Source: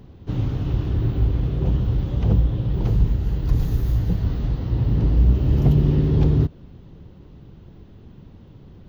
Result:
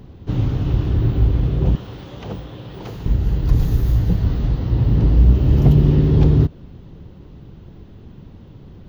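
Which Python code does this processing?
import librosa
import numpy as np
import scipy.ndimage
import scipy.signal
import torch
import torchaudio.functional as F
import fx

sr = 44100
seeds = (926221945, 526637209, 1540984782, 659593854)

y = fx.highpass(x, sr, hz=780.0, slope=6, at=(1.75, 3.06))
y = y * 10.0 ** (4.0 / 20.0)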